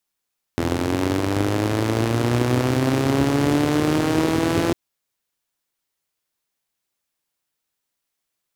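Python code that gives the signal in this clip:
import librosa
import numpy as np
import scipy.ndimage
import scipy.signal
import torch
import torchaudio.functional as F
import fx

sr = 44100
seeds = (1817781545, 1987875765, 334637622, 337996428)

y = fx.engine_four_rev(sr, seeds[0], length_s=4.15, rpm=2500, resonances_hz=(120.0, 280.0), end_rpm=5100)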